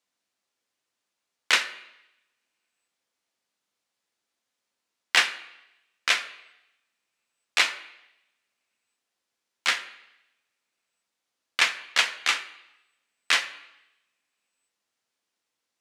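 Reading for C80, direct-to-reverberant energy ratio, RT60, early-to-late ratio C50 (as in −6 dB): 15.5 dB, 9.0 dB, 0.85 s, 13.5 dB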